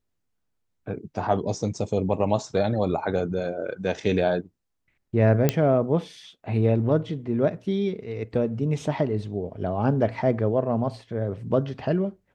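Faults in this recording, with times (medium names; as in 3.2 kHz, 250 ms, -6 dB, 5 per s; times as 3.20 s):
5.49 s: pop -6 dBFS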